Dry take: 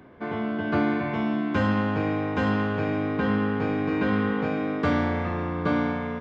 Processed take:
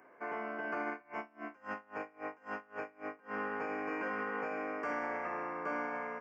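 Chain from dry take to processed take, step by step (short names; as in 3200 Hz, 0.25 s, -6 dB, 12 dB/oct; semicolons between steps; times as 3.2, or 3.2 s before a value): HPF 560 Hz 12 dB/oct; limiter -23.5 dBFS, peak gain reduction 6.5 dB; Butterworth band-stop 3700 Hz, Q 1.3; 0.91–3.34 dB-linear tremolo 3.7 Hz, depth 28 dB; gain -4.5 dB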